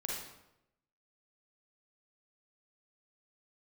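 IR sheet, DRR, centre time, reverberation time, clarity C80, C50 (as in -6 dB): -3.0 dB, 63 ms, 0.85 s, 4.0 dB, -1.0 dB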